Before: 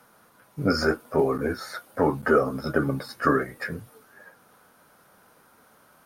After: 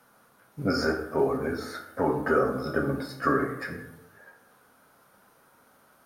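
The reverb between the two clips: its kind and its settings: plate-style reverb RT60 0.85 s, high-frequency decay 0.55×, DRR 2.5 dB; gain -4.5 dB

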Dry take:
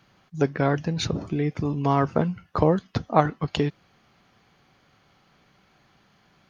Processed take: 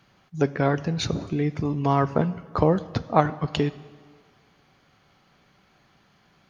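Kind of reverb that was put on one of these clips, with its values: plate-style reverb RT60 1.7 s, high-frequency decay 0.75×, DRR 15.5 dB

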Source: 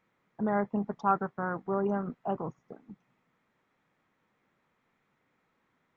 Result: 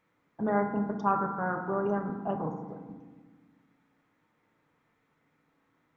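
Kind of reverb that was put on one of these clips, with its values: FDN reverb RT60 1.4 s, low-frequency decay 1.5×, high-frequency decay 0.25×, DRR 3.5 dB

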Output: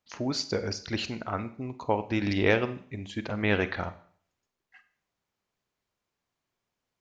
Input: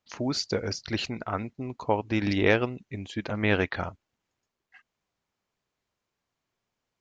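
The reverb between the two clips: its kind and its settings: Schroeder reverb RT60 0.52 s, combs from 31 ms, DRR 12 dB; gain -1.5 dB

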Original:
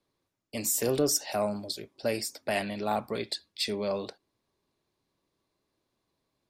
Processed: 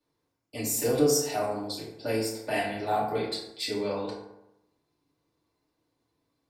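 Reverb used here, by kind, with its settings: FDN reverb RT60 0.87 s, low-frequency decay 1×, high-frequency decay 0.5×, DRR -8 dB; gain -7 dB

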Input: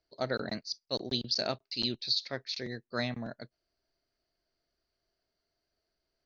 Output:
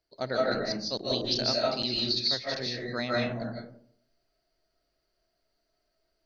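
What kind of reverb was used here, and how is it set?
digital reverb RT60 0.61 s, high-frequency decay 0.35×, pre-delay 0.115 s, DRR -4 dB

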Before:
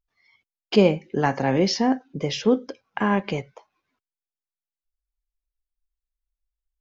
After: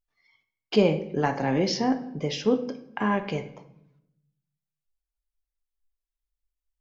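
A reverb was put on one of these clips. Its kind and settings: shoebox room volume 210 m³, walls mixed, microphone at 0.38 m; gain -4 dB

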